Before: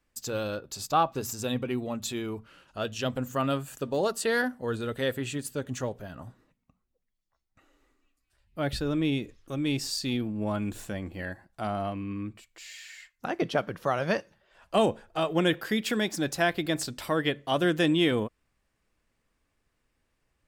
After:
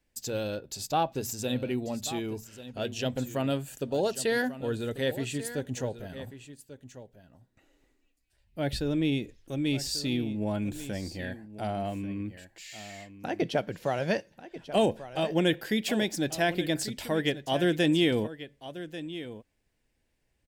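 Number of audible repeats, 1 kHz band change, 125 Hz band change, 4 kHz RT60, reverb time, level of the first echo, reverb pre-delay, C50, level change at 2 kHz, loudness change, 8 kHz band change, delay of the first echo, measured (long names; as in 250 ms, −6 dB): 1, −3.0 dB, 0.0 dB, no reverb audible, no reverb audible, −14.0 dB, no reverb audible, no reverb audible, −2.0 dB, −1.0 dB, 0.0 dB, 1,140 ms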